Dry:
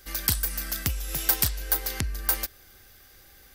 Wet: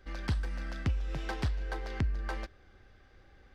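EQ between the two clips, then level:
head-to-tape spacing loss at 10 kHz 36 dB
0.0 dB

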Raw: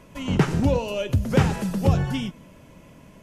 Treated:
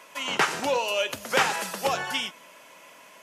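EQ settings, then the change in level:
high-pass filter 870 Hz 12 dB per octave
+7.5 dB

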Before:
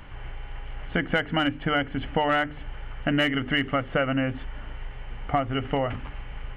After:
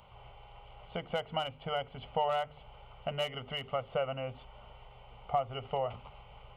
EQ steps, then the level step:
high-pass filter 220 Hz 6 dB per octave
phaser with its sweep stopped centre 710 Hz, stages 4
−4.0 dB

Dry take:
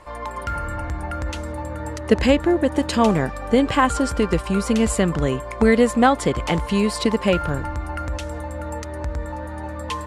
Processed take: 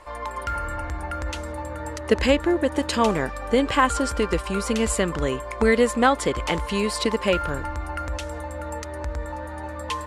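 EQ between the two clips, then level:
parametric band 150 Hz −8.5 dB 1.8 octaves
dynamic equaliser 730 Hz, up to −5 dB, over −41 dBFS, Q 5.3
0.0 dB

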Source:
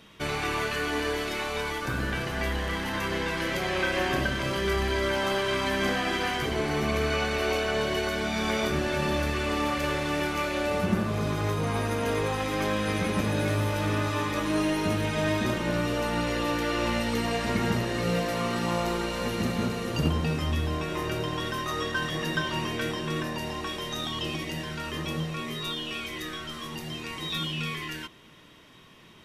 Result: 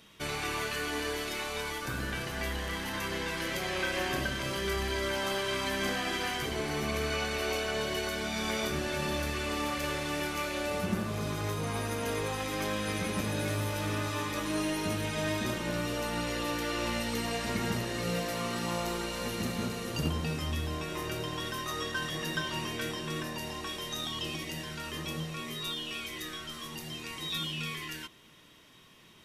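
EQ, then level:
high-shelf EQ 4,100 Hz +8.5 dB
−6.0 dB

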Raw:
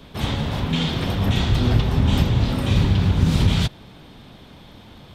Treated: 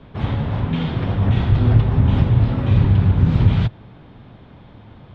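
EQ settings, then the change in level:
low-pass filter 2,000 Hz 12 dB per octave
parametric band 110 Hz +7 dB 0.53 octaves
0.0 dB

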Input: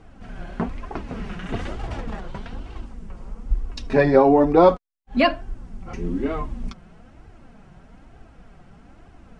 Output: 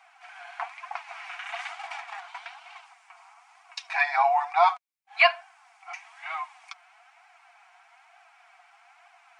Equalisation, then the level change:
linear-phase brick-wall high-pass 670 Hz
parametric band 2,300 Hz +10 dB 0.25 octaves
0.0 dB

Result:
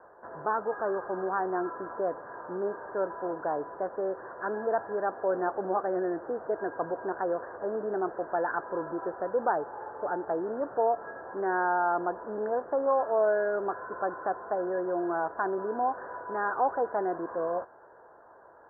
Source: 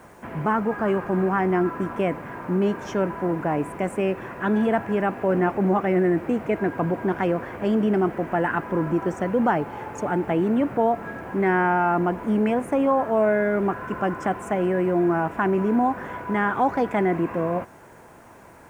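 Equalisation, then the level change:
Butterworth low-pass 1,700 Hz 96 dB per octave
low shelf with overshoot 320 Hz −13 dB, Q 1.5
−6.5 dB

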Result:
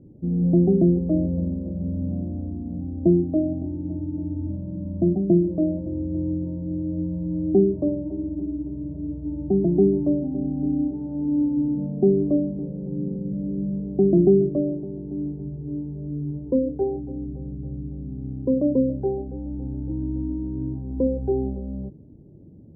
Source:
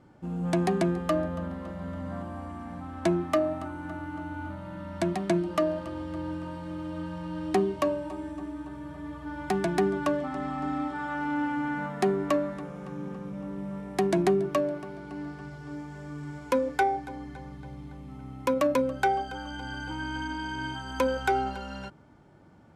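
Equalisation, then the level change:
inverse Chebyshev low-pass filter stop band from 1,200 Hz, stop band 50 dB
low-shelf EQ 320 Hz +4.5 dB
+6.5 dB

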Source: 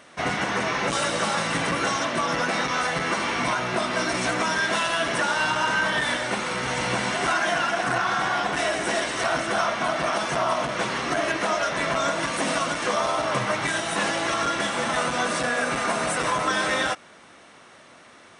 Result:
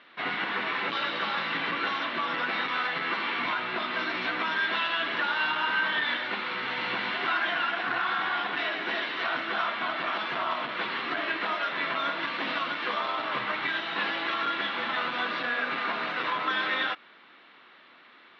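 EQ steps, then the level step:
high-pass filter 330 Hz 12 dB per octave
Butterworth low-pass 4,100 Hz 48 dB per octave
parametric band 600 Hz −10 dB 1.1 octaves
−1.5 dB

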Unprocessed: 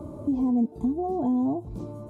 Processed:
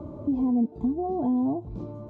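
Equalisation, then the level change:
high-frequency loss of the air 160 metres
0.0 dB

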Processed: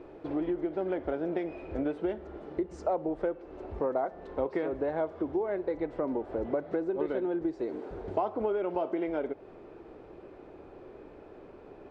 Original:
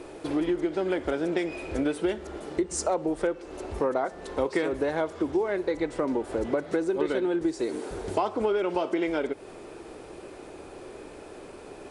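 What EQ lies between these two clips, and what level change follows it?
dynamic equaliser 680 Hz, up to +5 dB, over −41 dBFS, Q 2
head-to-tape spacing loss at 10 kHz 35 dB
−4.0 dB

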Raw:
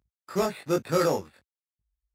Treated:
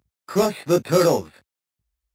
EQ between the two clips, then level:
high-pass filter 67 Hz
dynamic equaliser 1,500 Hz, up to −5 dB, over −40 dBFS, Q 1.2
+7.5 dB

